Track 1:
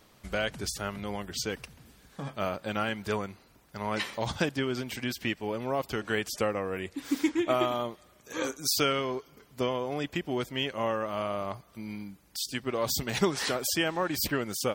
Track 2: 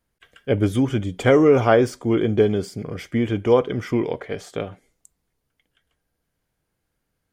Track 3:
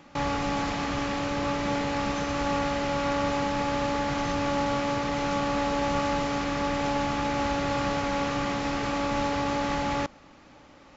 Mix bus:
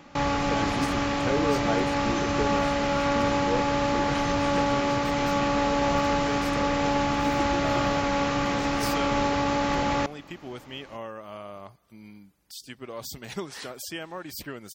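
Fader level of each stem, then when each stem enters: −8.0, −14.0, +2.5 decibels; 0.15, 0.00, 0.00 seconds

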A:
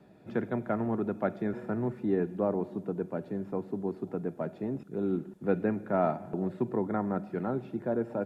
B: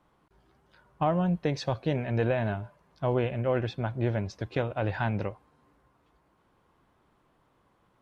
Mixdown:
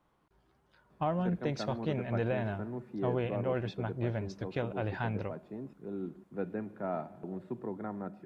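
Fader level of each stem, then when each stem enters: −8.5, −5.5 decibels; 0.90, 0.00 seconds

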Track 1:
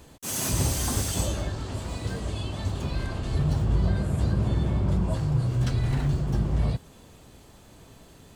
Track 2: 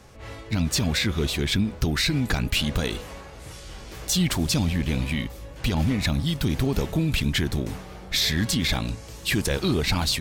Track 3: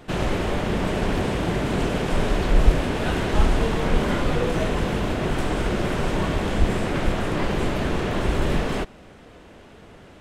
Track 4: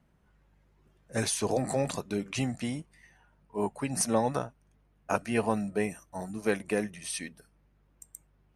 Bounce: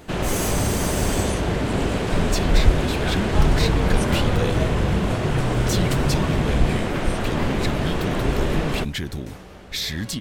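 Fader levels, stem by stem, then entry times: +0.5, −4.0, 0.0, −7.0 decibels; 0.00, 1.60, 0.00, 0.00 seconds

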